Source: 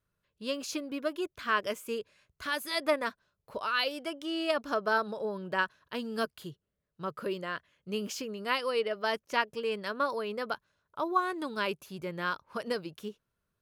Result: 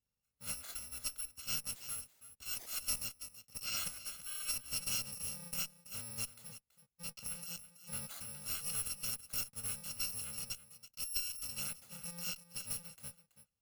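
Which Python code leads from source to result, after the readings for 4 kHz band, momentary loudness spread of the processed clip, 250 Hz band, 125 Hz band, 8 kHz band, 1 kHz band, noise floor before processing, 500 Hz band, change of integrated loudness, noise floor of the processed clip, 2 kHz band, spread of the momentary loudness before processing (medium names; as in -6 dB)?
-5.0 dB, 10 LU, -19.5 dB, -4.0 dB, +10.0 dB, -23.5 dB, -84 dBFS, -28.5 dB, -6.0 dB, under -85 dBFS, -16.0 dB, 10 LU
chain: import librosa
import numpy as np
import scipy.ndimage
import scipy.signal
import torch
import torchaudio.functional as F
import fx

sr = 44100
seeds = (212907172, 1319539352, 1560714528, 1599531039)

y = fx.bit_reversed(x, sr, seeds[0], block=128)
y = y + 10.0 ** (-13.5 / 20.0) * np.pad(y, (int(329 * sr / 1000.0), 0))[:len(y)]
y = fx.tube_stage(y, sr, drive_db=25.0, bias=0.75)
y = F.gain(torch.from_numpy(y), -4.0).numpy()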